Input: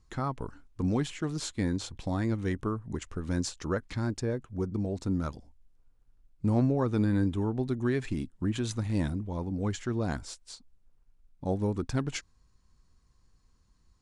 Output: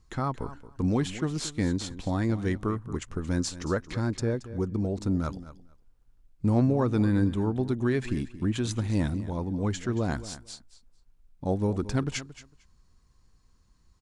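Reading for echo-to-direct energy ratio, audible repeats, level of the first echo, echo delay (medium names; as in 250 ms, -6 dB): -15.0 dB, 2, -15.0 dB, 226 ms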